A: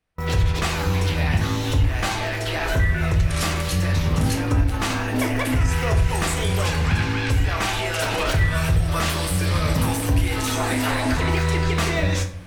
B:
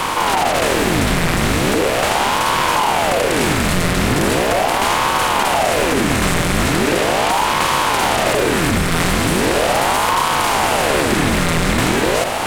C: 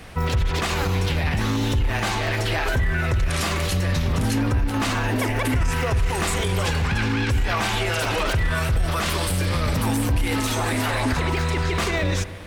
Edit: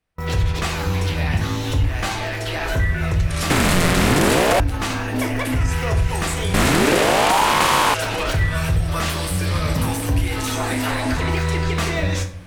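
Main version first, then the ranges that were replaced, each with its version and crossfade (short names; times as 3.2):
A
3.5–4.6 from B
6.54–7.94 from B
not used: C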